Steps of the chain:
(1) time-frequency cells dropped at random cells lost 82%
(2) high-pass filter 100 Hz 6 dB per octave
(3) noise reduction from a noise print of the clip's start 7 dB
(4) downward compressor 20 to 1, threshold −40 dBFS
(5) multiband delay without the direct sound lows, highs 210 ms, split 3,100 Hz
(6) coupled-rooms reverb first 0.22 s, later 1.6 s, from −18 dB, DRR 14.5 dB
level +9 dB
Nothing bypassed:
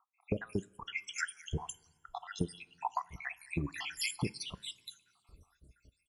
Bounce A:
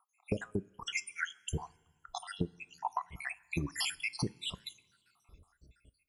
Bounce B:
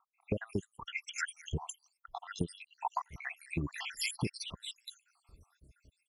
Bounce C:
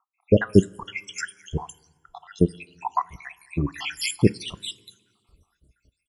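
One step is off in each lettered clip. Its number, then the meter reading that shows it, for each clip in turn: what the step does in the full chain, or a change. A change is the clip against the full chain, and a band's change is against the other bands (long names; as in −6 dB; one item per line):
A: 5, echo-to-direct ratio −11.5 dB to −14.5 dB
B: 6, echo-to-direct ratio −11.5 dB to −14.5 dB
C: 4, average gain reduction 8.0 dB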